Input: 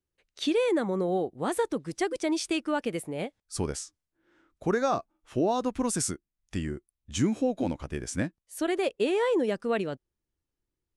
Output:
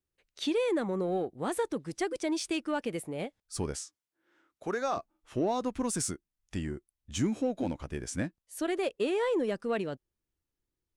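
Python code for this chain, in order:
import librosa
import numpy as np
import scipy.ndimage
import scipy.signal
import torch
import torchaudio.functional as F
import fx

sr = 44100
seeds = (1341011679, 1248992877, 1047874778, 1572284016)

p1 = fx.highpass(x, sr, hz=450.0, slope=6, at=(3.76, 4.97))
p2 = 10.0 ** (-31.5 / 20.0) * np.tanh(p1 / 10.0 ** (-31.5 / 20.0))
p3 = p1 + F.gain(torch.from_numpy(p2), -9.0).numpy()
y = F.gain(torch.from_numpy(p3), -4.5).numpy()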